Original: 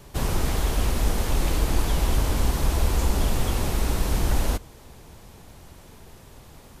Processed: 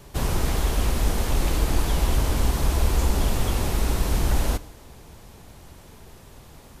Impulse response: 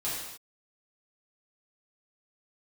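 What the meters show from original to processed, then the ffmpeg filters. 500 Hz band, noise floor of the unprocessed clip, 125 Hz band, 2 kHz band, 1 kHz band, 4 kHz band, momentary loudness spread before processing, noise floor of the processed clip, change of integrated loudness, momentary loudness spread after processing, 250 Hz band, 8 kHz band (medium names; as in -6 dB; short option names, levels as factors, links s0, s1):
+0.5 dB, -48 dBFS, +1.0 dB, +0.5 dB, +0.5 dB, +0.5 dB, 2 LU, -47 dBFS, +1.0 dB, 2 LU, +0.5 dB, +0.5 dB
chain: -filter_complex "[0:a]asplit=2[s0][s1];[1:a]atrim=start_sample=2205[s2];[s1][s2]afir=irnorm=-1:irlink=0,volume=0.0841[s3];[s0][s3]amix=inputs=2:normalize=0"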